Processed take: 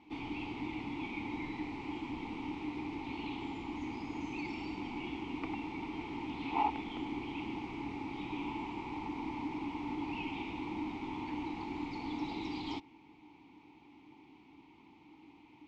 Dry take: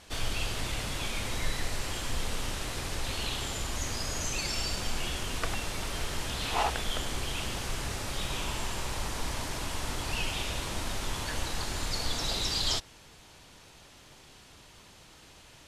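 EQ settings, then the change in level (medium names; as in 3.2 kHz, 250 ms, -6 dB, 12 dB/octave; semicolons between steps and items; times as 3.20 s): vowel filter u; Bessel low-pass 4.1 kHz, order 2; bass shelf 460 Hz +5.5 dB; +7.5 dB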